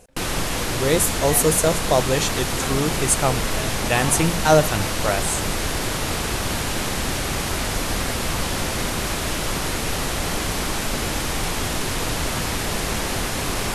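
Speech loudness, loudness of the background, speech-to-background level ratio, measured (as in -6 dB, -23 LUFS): -21.0 LUFS, -24.0 LUFS, 3.0 dB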